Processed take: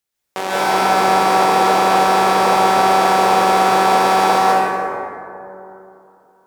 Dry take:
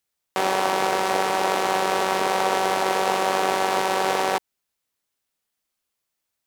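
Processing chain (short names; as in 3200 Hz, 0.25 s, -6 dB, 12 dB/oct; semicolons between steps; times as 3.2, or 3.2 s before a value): plate-style reverb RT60 2.9 s, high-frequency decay 0.35×, pre-delay 0.12 s, DRR -9 dB; gain -1 dB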